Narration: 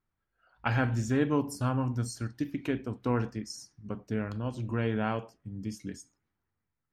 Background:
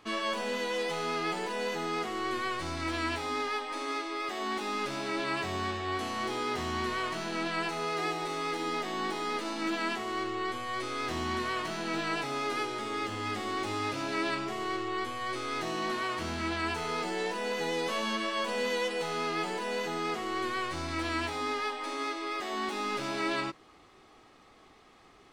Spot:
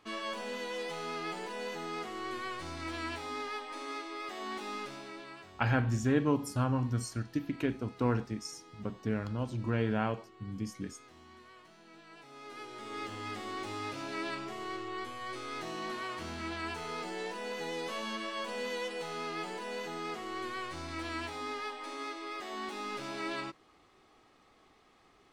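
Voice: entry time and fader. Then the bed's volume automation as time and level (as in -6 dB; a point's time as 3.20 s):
4.95 s, -1.0 dB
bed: 4.75 s -6 dB
5.68 s -23 dB
12.08 s -23 dB
12.99 s -6 dB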